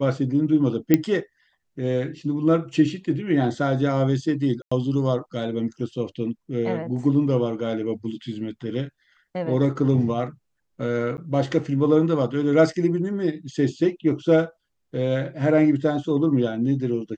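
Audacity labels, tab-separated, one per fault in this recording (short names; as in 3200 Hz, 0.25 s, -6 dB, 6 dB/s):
0.940000	0.940000	pop -4 dBFS
4.620000	4.710000	gap 95 ms
11.170000	11.180000	gap 9.9 ms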